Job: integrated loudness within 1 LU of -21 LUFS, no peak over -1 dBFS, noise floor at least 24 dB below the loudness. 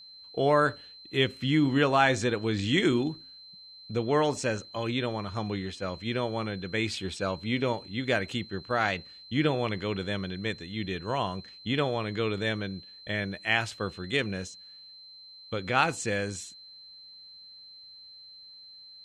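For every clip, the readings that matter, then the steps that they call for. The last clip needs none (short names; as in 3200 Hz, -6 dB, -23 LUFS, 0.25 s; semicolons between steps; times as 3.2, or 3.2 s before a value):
steady tone 4100 Hz; tone level -47 dBFS; loudness -29.0 LUFS; peak -8.0 dBFS; loudness target -21.0 LUFS
-> notch 4100 Hz, Q 30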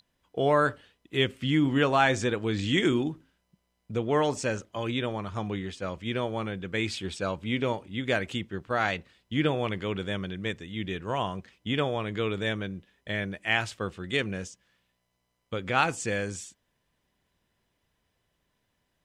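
steady tone none; loudness -29.0 LUFS; peak -8.0 dBFS; loudness target -21.0 LUFS
-> gain +8 dB; limiter -1 dBFS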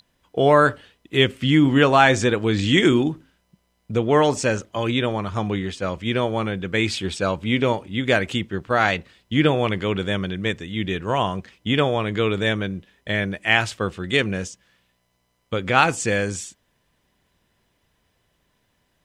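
loudness -21.0 LUFS; peak -1.0 dBFS; noise floor -69 dBFS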